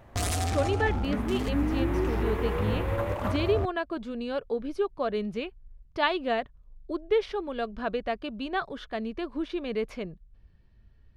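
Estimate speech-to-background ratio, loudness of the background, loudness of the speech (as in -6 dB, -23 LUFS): -1.5 dB, -30.0 LUFS, -31.5 LUFS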